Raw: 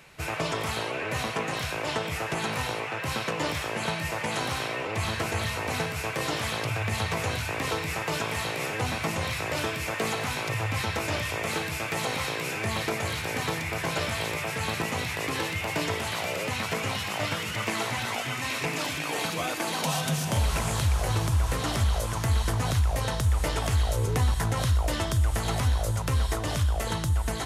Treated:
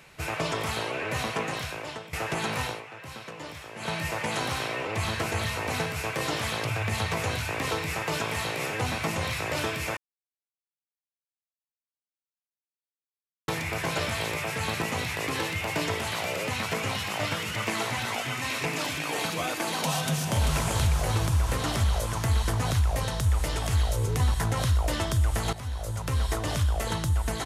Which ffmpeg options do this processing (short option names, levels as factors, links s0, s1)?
-filter_complex "[0:a]asplit=2[s0][s1];[s1]afade=t=in:st=20.02:d=0.01,afade=t=out:st=20.47:d=0.01,aecho=0:1:390|780|1170|1560|1950|2340|2730|3120:0.501187|0.300712|0.180427|0.108256|0.0649539|0.0389723|0.0233834|0.01403[s2];[s0][s2]amix=inputs=2:normalize=0,asettb=1/sr,asplit=3[s3][s4][s5];[s3]atrim=end=23.034[s6];[s4]atrim=start=23.03:end=24.2,asetpts=PTS-STARTPTS,afade=t=in:d=0.004:c=qsin,afade=t=out:st=1.166:d=0.004:c=qsin,acrossover=split=180|3000[s7][s8][s9];[s8]acompressor=threshold=0.0316:ratio=6:attack=3.2:release=140:knee=2.83:detection=peak[s10];[s7][s10][s9]amix=inputs=3:normalize=0[s11];[s5]atrim=start=24.196[s12];[s6][s11]acrossfade=d=0.004:c1=hsin:c2=qsin[s13];[s13][s12]acrossfade=d=0.004:c1=qsin:c2=hsin,asplit=7[s14][s15][s16][s17][s18][s19][s20];[s14]atrim=end=2.13,asetpts=PTS-STARTPTS,afade=t=out:st=1.42:d=0.71:silence=0.158489[s21];[s15]atrim=start=2.13:end=2.83,asetpts=PTS-STARTPTS,afade=t=in:d=0.004:c=hsin:silence=0.158489,afade=t=out:st=0.51:d=0.19:silence=0.281838[s22];[s16]atrim=start=2.83:end=3.76,asetpts=PTS-STARTPTS,volume=0.282[s23];[s17]atrim=start=3.76:end=9.97,asetpts=PTS-STARTPTS,afade=t=in:d=0.19:silence=0.281838,afade=t=out:st=6.206:d=0.004:c=hsin[s24];[s18]atrim=start=9.97:end=13.48,asetpts=PTS-STARTPTS,volume=0[s25];[s19]atrim=start=13.48:end=25.53,asetpts=PTS-STARTPTS,afade=t=in:d=0.004:c=hsin,afade=t=out:st=12.046:d=0.004:c=hsin:silence=0.188365[s26];[s20]atrim=start=25.53,asetpts=PTS-STARTPTS,afade=t=in:d=0.79:silence=0.188365[s27];[s21][s22][s23][s24][s25][s26][s27]concat=n=7:v=0:a=1"